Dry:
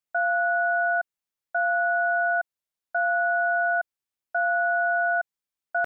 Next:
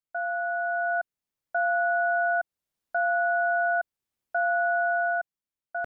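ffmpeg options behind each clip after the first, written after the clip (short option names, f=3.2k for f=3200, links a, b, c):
-af "dynaudnorm=f=210:g=13:m=11dB,lowshelf=f=500:g=8.5,alimiter=limit=-10.5dB:level=0:latency=1:release=376,volume=-8dB"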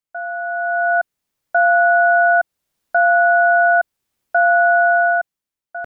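-af "dynaudnorm=f=110:g=13:m=8.5dB,volume=3dB"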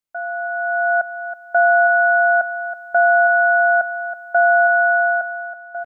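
-af "aecho=1:1:324|648|972:0.282|0.0846|0.0254"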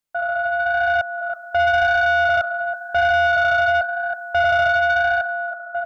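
-filter_complex "[0:a]asplit=2[a][b];[b]alimiter=limit=-18dB:level=0:latency=1:release=407,volume=1dB[c];[a][c]amix=inputs=2:normalize=0,flanger=delay=1.1:depth=7.5:regen=-70:speed=0.93:shape=sinusoidal,asoftclip=type=tanh:threshold=-13.5dB,volume=1.5dB"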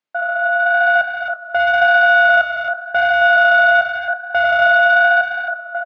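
-filter_complex "[0:a]highpass=190,lowpass=3.6k,asplit=2[a][b];[b]adelay=21,volume=-11.5dB[c];[a][c]amix=inputs=2:normalize=0,asplit=2[d][e];[e]aecho=0:1:270:0.531[f];[d][f]amix=inputs=2:normalize=0,volume=3dB"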